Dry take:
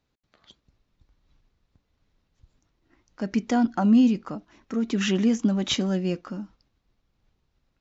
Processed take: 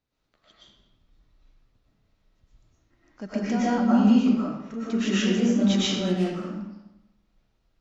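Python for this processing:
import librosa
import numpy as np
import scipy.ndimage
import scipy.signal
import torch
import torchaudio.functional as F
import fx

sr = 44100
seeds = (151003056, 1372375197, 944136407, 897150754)

y = fx.self_delay(x, sr, depth_ms=0.23, at=(6.01, 6.42))
y = fx.rev_freeverb(y, sr, rt60_s=0.96, hf_ratio=0.8, predelay_ms=80, drr_db=-9.0)
y = y * librosa.db_to_amplitude(-7.5)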